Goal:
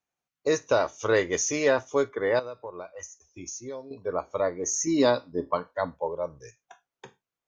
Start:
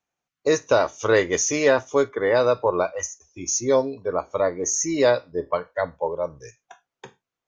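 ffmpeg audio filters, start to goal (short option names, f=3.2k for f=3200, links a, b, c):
-filter_complex "[0:a]asettb=1/sr,asplit=3[a][b][c];[a]atrim=end=2.394[d];[b]atrim=start=2.39:end=3.91,asetpts=PTS-STARTPTS,afade=t=in:d=0.004:c=qsin,afade=t=out:st=1.516:d=0.004:c=qsin,acompressor=threshold=-33dB:ratio=4[e];[c]atrim=start=3.906[f];[d][e]acrossfade=d=0.004:c1=hsin:c2=qsin[g];[g][f]acrossfade=d=0.004:c1=qsin:c2=hsin,asettb=1/sr,asplit=3[h][i][j];[h]atrim=end=4.874[k];[i]atrim=start=4.87:end=5.94,asetpts=PTS-STARTPTS,afade=t=in:d=0.004:c=qsin,afade=t=out:st=1.066:d=0.004:c=qsin,equalizer=f=250:t=o:w=1:g=10,equalizer=f=500:t=o:w=1:g=-4,equalizer=f=1k:t=o:w=1:g=6,equalizer=f=2k:t=o:w=1:g=-5,equalizer=f=4k:t=o:w=1:g=5[l];[j]atrim=start=5.936[m];[k][l]acrossfade=d=0.004:c1=hsin:c2=qsin[n];[n][m]acrossfade=d=0.004:c1=qsin:c2=hsin,volume=-4.5dB"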